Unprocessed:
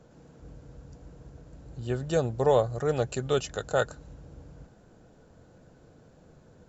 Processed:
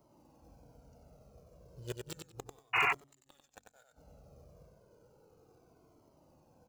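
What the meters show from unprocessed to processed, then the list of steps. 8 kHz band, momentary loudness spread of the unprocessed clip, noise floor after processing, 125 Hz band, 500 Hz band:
no reading, 13 LU, -71 dBFS, -19.0 dB, -23.0 dB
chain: local Wiener filter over 25 samples; tilt EQ +4 dB/octave; inverted gate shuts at -24 dBFS, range -38 dB; in parallel at -6 dB: sample-rate reducer 5.6 kHz, jitter 20%; on the sum: de-hum 46.15 Hz, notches 6; on a send: feedback delay 94 ms, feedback 18%, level -5 dB; on the sum: painted sound noise, 2.73–2.93 s, 690–2900 Hz -25 dBFS; treble shelf 5.7 kHz +9 dB; Shepard-style flanger falling 0.33 Hz

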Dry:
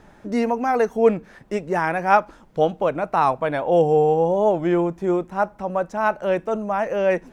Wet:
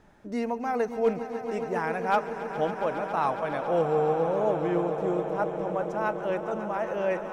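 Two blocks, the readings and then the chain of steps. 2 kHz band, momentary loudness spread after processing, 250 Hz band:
-7.0 dB, 6 LU, -7.5 dB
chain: hard clipper -7 dBFS, distortion -29 dB; echo with a slow build-up 138 ms, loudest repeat 5, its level -13.5 dB; trim -8.5 dB

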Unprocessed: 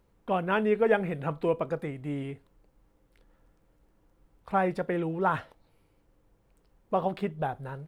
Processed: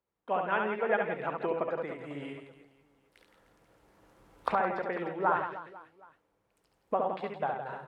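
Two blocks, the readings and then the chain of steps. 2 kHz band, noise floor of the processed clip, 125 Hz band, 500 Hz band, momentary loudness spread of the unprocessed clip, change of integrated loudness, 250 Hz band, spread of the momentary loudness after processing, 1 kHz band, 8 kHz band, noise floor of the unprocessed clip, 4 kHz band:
0.0 dB, -76 dBFS, -11.5 dB, -3.5 dB, 10 LU, -3.0 dB, -8.0 dB, 13 LU, 0.0 dB, no reading, -68 dBFS, -3.5 dB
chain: recorder AGC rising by 7.5 dB/s; vibrato 2.5 Hz 11 cents; harmonic-percussive split harmonic -4 dB; in parallel at -2.5 dB: compression, threshold -42 dBFS, peak gain reduction 20 dB; on the sum: high-pass 740 Hz 6 dB/octave; treble shelf 2.7 kHz -9.5 dB; on a send: reverse bouncing-ball echo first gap 70 ms, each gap 1.4×, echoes 5; on the sum: low-pass that closes with the level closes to 2.9 kHz, closed at -26.5 dBFS; three bands expanded up and down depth 40%

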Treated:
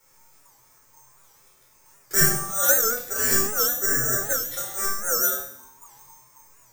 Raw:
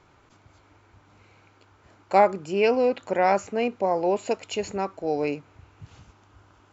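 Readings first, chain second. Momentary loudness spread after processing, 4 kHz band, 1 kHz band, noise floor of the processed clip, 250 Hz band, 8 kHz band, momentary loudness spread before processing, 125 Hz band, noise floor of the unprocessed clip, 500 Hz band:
8 LU, +8.0 dB, -8.0 dB, -58 dBFS, -7.0 dB, no reading, 9 LU, +4.5 dB, -59 dBFS, -8.5 dB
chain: low-pass 5.3 kHz 12 dB/octave; band-stop 2.2 kHz, Q 11; ring modulator 980 Hz; feedback comb 130 Hz, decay 0.73 s, harmonics all, mix 90%; careless resampling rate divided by 6×, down none, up zero stuff; simulated room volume 920 m³, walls furnished, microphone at 4.4 m; warped record 78 rpm, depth 160 cents; trim +4.5 dB

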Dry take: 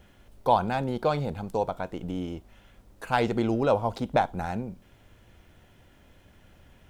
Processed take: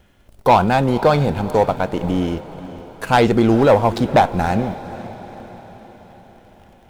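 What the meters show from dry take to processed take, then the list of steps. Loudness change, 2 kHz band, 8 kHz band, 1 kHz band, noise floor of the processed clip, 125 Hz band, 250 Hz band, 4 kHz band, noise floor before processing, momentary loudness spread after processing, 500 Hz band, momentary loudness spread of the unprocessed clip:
+11.0 dB, +11.0 dB, no reading, +10.5 dB, -51 dBFS, +12.0 dB, +12.0 dB, +11.0 dB, -58 dBFS, 20 LU, +11.0 dB, 11 LU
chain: waveshaping leveller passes 2; echo that smears into a reverb 475 ms, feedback 54%, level -15.5 dB; trim +5 dB

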